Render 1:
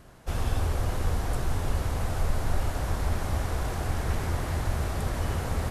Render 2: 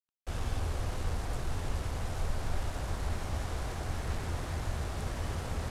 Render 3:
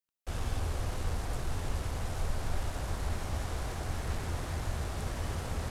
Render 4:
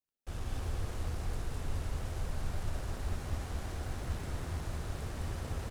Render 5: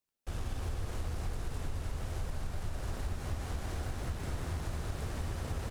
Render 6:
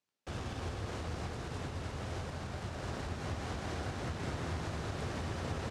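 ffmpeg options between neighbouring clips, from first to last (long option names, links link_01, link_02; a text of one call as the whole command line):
ffmpeg -i in.wav -af "acrusher=bits=5:mix=0:aa=0.5,lowpass=10000,volume=-6.5dB" out.wav
ffmpeg -i in.wav -af "highshelf=frequency=9200:gain=4" out.wav
ffmpeg -i in.wav -filter_complex "[0:a]asplit=2[link_01][link_02];[link_02]acrusher=samples=38:mix=1:aa=0.000001,volume=-7dB[link_03];[link_01][link_03]amix=inputs=2:normalize=0,aecho=1:1:210:0.668,volume=-7dB" out.wav
ffmpeg -i in.wav -af "acompressor=threshold=-35dB:ratio=6,volume=3.5dB" out.wav
ffmpeg -i in.wav -af "highpass=110,lowpass=6200,volume=3.5dB" out.wav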